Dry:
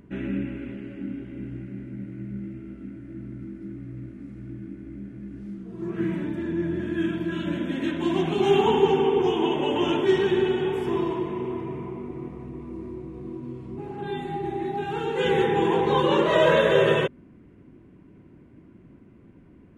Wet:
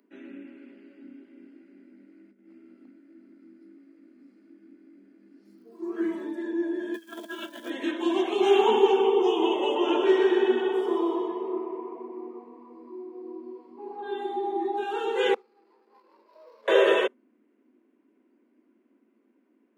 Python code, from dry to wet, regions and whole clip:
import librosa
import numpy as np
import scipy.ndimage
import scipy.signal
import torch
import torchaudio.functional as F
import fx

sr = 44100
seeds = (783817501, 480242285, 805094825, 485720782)

y = fx.chain(x, sr, fx.over_compress(threshold_db=-36.0, ratio=-0.5),
    fx.clip_hard(threshold_db=-29.0), at=(2.29, 2.91))
y = fx.peak_eq(y, sr, hz=110.0, db=3.5, octaves=1.5, at=(5.45, 6.33), fade=0.02)
y = fx.dmg_crackle(y, sr, seeds[0], per_s=260.0, level_db=-58.0, at=(5.45, 6.33), fade=0.02)
y = fx.chain(y, sr, fx.highpass(hz=130.0, slope=6),
    fx.over_compress(threshold_db=-32.0, ratio=-0.5),
    fx.quant_companded(bits=6), at=(6.94, 7.7))
y = fx.chain(y, sr, fx.high_shelf(hz=3400.0, db=-8.0),
    fx.echo_feedback(ms=125, feedback_pct=44, wet_db=-5.0), at=(9.75, 14.77))
y = fx.chain(y, sr, fx.gate_flip(shuts_db=-20.0, range_db=-29),
    fx.resample_bad(factor=8, down='none', up='filtered'),
    fx.running_max(window=17), at=(15.34, 16.68))
y = fx.noise_reduce_blind(y, sr, reduce_db=12)
y = scipy.signal.sosfilt(scipy.signal.butter(16, 220.0, 'highpass', fs=sr, output='sos'), y)